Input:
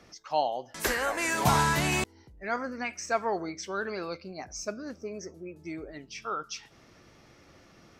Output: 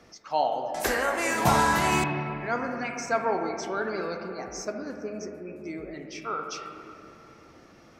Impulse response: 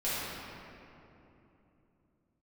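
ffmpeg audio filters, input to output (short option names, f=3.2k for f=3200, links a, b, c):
-filter_complex "[0:a]asplit=2[a][b];[b]highpass=160,lowpass=2.7k[c];[1:a]atrim=start_sample=2205,lowpass=4.9k[d];[c][d]afir=irnorm=-1:irlink=0,volume=-10dB[e];[a][e]amix=inputs=2:normalize=0"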